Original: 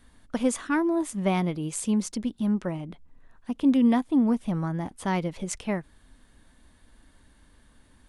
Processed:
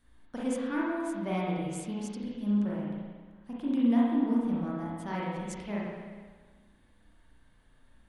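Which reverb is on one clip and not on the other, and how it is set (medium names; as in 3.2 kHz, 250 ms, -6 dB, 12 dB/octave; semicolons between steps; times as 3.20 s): spring tank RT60 1.5 s, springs 34/54 ms, chirp 35 ms, DRR -6 dB; trim -12 dB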